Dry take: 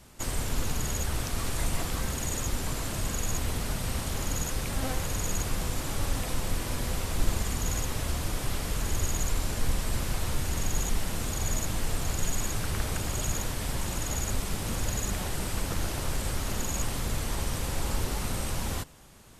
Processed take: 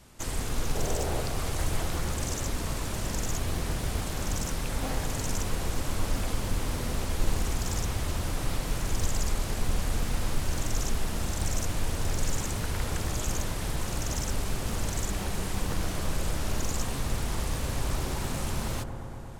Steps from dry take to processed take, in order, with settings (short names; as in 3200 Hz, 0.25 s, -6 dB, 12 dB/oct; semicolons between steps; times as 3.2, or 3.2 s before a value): spectral gain 0.75–1.23, 330–790 Hz +10 dB; on a send: dark delay 0.117 s, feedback 83%, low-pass 1300 Hz, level -8 dB; on the sum: Doppler distortion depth 0.92 ms; gain -1 dB